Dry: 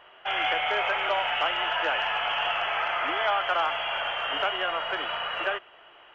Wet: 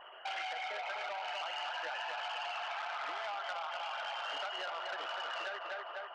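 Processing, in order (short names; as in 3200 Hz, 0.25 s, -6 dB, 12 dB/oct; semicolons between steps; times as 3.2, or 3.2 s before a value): formant sharpening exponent 2; notches 60/120 Hz; narrowing echo 0.247 s, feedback 48%, band-pass 850 Hz, level -4.5 dB; compressor 8:1, threshold -35 dBFS, peak gain reduction 14 dB; core saturation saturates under 2400 Hz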